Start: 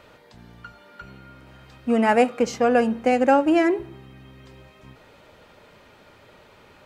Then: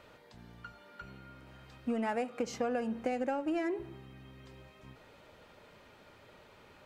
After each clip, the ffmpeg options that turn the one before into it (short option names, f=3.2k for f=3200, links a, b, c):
-filter_complex "[0:a]asplit=2[a][b];[b]asoftclip=type=hard:threshold=-18.5dB,volume=-12dB[c];[a][c]amix=inputs=2:normalize=0,acompressor=threshold=-21dB:ratio=12,volume=-8.5dB"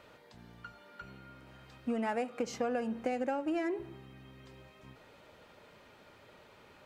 -af "lowshelf=f=65:g=-6"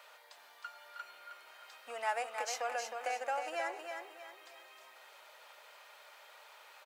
-filter_complex "[0:a]highpass=f=660:w=0.5412,highpass=f=660:w=1.3066,crystalizer=i=1:c=0,asplit=2[a][b];[b]aecho=0:1:314|628|942|1256:0.501|0.185|0.0686|0.0254[c];[a][c]amix=inputs=2:normalize=0,volume=2dB"